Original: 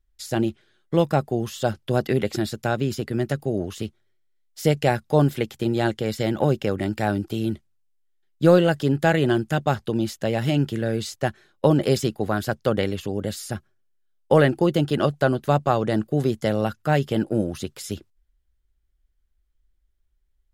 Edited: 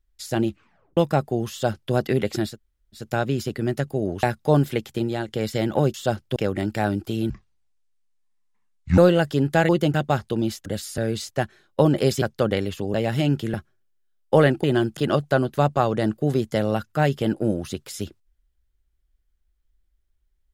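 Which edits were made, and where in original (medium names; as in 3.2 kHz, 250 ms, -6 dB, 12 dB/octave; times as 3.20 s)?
0.49 s: tape stop 0.48 s
1.51–1.93 s: copy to 6.59 s
2.52 s: insert room tone 0.48 s, crossfade 0.16 s
3.75–4.88 s: delete
5.59–5.93 s: fade out, to -9 dB
7.53–8.47 s: speed 56%
9.18–9.51 s: swap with 14.62–14.87 s
10.23–10.83 s: swap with 13.20–13.52 s
12.07–12.48 s: delete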